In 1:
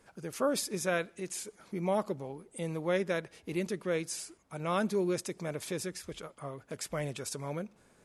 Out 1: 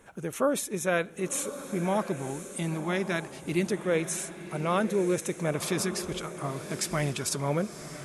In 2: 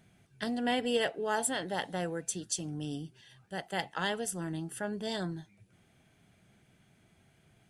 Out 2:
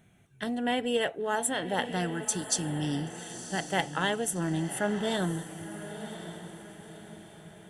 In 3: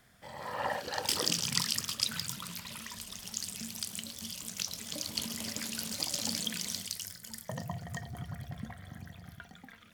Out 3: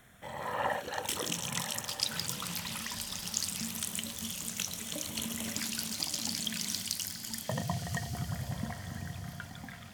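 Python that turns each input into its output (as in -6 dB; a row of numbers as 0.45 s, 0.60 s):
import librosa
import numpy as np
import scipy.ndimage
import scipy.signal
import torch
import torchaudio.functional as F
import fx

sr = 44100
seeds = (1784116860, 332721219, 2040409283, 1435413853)

p1 = fx.rider(x, sr, range_db=3, speed_s=0.5)
p2 = fx.filter_lfo_notch(p1, sr, shape='square', hz=0.27, low_hz=510.0, high_hz=4800.0, q=2.3)
p3 = p2 + fx.echo_diffused(p2, sr, ms=1058, feedback_pct=42, wet_db=-11.0, dry=0)
y = p3 * 10.0 ** (-12 / 20.0) / np.max(np.abs(p3))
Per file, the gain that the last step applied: +6.0 dB, +4.5 dB, +1.5 dB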